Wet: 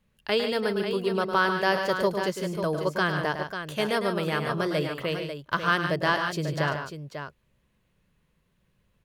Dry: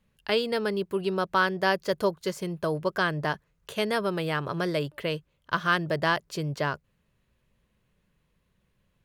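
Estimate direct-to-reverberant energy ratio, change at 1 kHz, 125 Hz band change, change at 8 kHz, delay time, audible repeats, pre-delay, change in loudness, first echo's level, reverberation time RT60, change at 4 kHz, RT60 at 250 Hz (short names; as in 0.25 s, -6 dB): none, +1.5 dB, +1.5 dB, +1.5 dB, 0.105 s, 3, none, +1.5 dB, -8.5 dB, none, +1.5 dB, none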